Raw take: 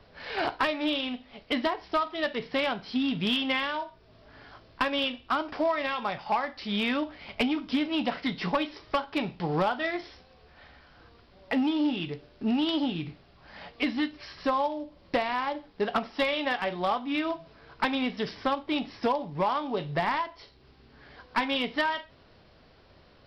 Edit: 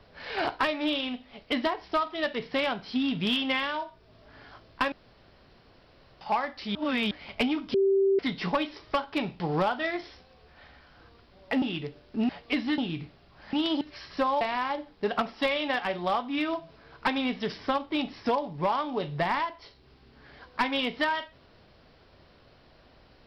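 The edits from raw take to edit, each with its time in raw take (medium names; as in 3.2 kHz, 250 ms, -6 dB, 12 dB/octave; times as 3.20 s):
4.92–6.21 s: room tone
6.75–7.11 s: reverse
7.74–8.19 s: bleep 390 Hz -19.5 dBFS
11.62–11.89 s: delete
12.56–12.84 s: swap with 13.59–14.08 s
14.68–15.18 s: delete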